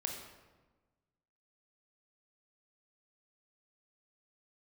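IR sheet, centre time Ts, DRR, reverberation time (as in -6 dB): 42 ms, 1.5 dB, 1.3 s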